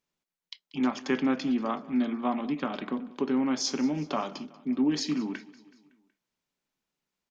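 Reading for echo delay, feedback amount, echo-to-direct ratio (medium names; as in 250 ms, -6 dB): 187 ms, 56%, -19.0 dB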